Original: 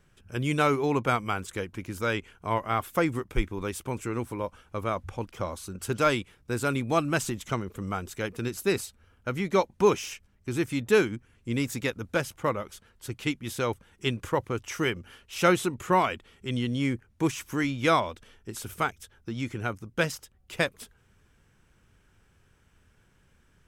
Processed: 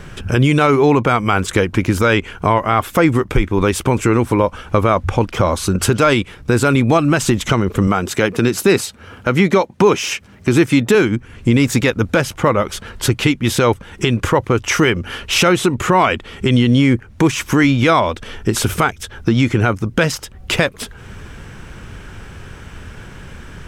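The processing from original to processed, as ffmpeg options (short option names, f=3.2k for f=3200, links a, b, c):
-filter_complex "[0:a]asettb=1/sr,asplit=3[a][b][c];[a]atrim=end=7.874[d];[b]atrim=start=7.87:end=10.95,asetpts=PTS-STARTPTS,afade=t=in:d=0.004:c=qsin,afade=t=out:st=3.076:d=0.004:c=qsin,highpass=120[e];[c]atrim=start=10.946[f];[d][e]acrossfade=d=0.004:c1=hsin:c2=qsin[g];[g][f]acrossfade=d=0.004:c1=qsin:c2=hsin,highshelf=f=7.8k:g=-11,acompressor=threshold=-47dB:ratio=2,alimiter=level_in=31dB:limit=-1dB:release=50:level=0:latency=1,volume=-2dB"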